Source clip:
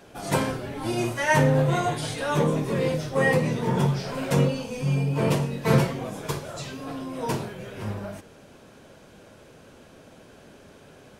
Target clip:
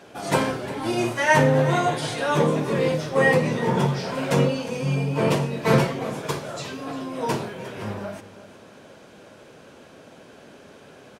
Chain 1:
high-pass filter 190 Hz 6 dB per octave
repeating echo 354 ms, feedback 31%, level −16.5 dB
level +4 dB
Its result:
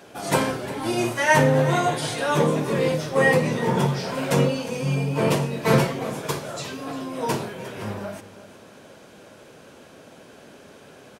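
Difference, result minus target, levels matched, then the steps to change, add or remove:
8,000 Hz band +3.0 dB
add after high-pass filter: high-shelf EQ 9,300 Hz −8.5 dB

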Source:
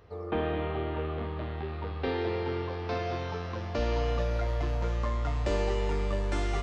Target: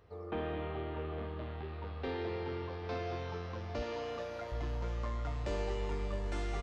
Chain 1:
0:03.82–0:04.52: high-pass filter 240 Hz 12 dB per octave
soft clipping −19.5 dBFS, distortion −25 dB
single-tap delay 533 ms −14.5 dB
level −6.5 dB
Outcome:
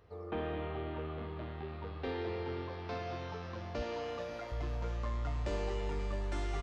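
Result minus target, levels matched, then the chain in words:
echo 267 ms early
0:03.82–0:04.52: high-pass filter 240 Hz 12 dB per octave
soft clipping −19.5 dBFS, distortion −25 dB
single-tap delay 800 ms −14.5 dB
level −6.5 dB

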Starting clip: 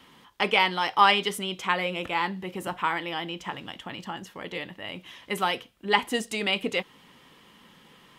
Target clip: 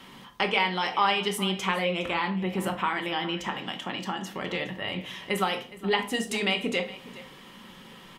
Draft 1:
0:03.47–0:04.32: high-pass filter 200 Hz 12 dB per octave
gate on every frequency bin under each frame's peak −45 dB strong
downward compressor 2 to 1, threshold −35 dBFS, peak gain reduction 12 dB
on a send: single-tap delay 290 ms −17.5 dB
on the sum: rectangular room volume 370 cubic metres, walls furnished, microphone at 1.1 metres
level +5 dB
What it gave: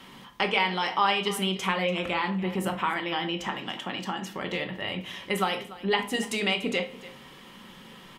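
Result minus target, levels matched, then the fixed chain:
echo 124 ms early
0:03.47–0:04.32: high-pass filter 200 Hz 12 dB per octave
gate on every frequency bin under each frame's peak −45 dB strong
downward compressor 2 to 1, threshold −35 dBFS, peak gain reduction 12 dB
on a send: single-tap delay 414 ms −17.5 dB
on the sum: rectangular room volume 370 cubic metres, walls furnished, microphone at 1.1 metres
level +5 dB

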